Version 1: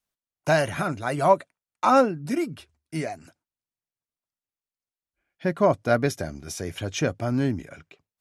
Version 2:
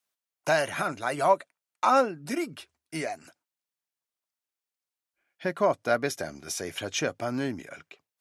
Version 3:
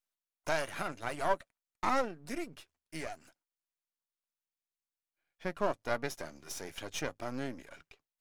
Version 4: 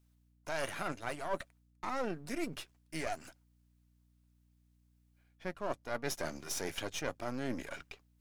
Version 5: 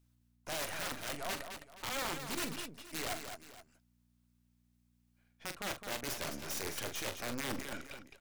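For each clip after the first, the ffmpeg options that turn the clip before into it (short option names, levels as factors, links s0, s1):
-filter_complex "[0:a]highpass=f=510:p=1,asplit=2[s0][s1];[s1]acompressor=threshold=0.0282:ratio=6,volume=0.891[s2];[s0][s2]amix=inputs=2:normalize=0,volume=0.708"
-af "aeval=exprs='if(lt(val(0),0),0.251*val(0),val(0))':c=same,volume=0.531"
-af "areverse,acompressor=threshold=0.01:ratio=12,areverse,aeval=exprs='val(0)+0.000158*(sin(2*PI*60*n/s)+sin(2*PI*2*60*n/s)/2+sin(2*PI*3*60*n/s)/3+sin(2*PI*4*60*n/s)/4+sin(2*PI*5*60*n/s)/5)':c=same,volume=2.51"
-filter_complex "[0:a]aeval=exprs='(mod(28.2*val(0)+1,2)-1)/28.2':c=same,asplit=2[s0][s1];[s1]aecho=0:1:42|212|472:0.335|0.422|0.15[s2];[s0][s2]amix=inputs=2:normalize=0,volume=0.891"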